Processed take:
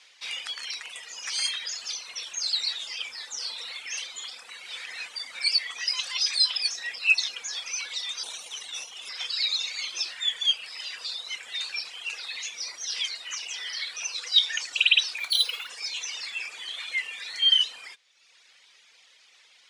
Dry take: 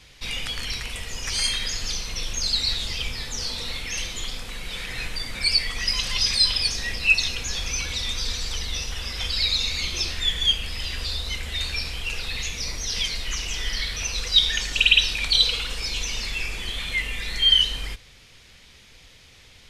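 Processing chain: 8.23–9.09 minimum comb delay 0.32 ms; LPF 9500 Hz 24 dB/oct; reverb removal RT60 1 s; HPF 800 Hz 12 dB/oct; 15.18–15.69 decimation joined by straight lines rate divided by 3×; gain -2.5 dB

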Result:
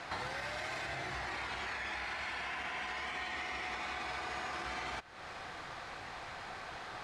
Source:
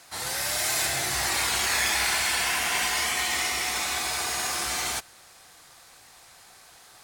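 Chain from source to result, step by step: LPF 2400 Hz 12 dB/oct; limiter -26.5 dBFS, peak gain reduction 9.5 dB; compressor 8:1, threshold -49 dBFS, peak gain reduction 16.5 dB; gain +11 dB

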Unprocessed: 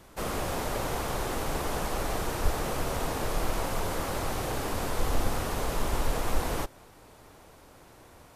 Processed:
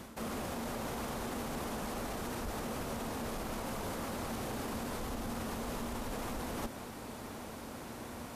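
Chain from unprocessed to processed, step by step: HPF 54 Hz 6 dB/oct; bell 230 Hz +13 dB 0.3 oct; limiter -27 dBFS, peak gain reduction 10 dB; reverse; compressor 6:1, threshold -44 dBFS, peak gain reduction 11.5 dB; reverse; gain +7.5 dB

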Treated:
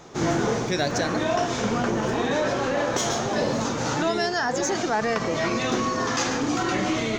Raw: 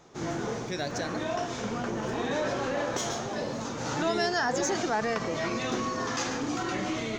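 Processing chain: vocal rider 0.5 s; gain +6 dB

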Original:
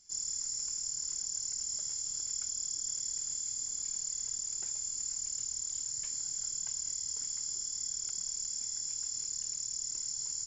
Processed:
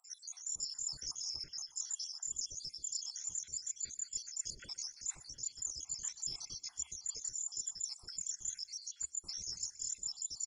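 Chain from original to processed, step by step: random spectral dropouts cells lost 77%; reverb removal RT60 0.8 s; bell 71 Hz +4 dB 0.28 oct; reverse; compressor, threshold -45 dBFS, peak gain reduction 11 dB; reverse; feedback echo 0.122 s, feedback 48%, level -19 dB; on a send at -17 dB: reverb RT60 0.65 s, pre-delay 3 ms; on the sum: gain +8 dB

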